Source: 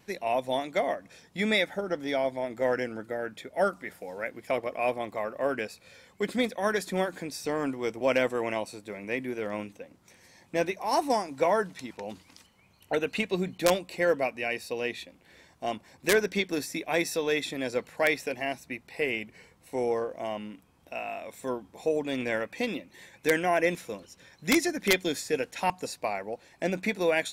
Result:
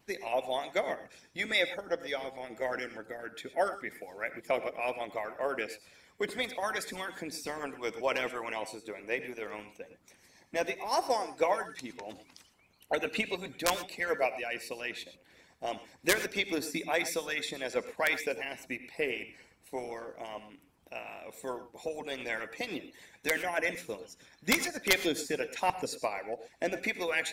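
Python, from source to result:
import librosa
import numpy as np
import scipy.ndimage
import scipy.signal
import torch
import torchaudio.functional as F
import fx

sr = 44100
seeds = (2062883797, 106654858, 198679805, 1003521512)

y = fx.hpss(x, sr, part='harmonic', gain_db=-17)
y = fx.rev_gated(y, sr, seeds[0], gate_ms=140, shape='rising', drr_db=11.5)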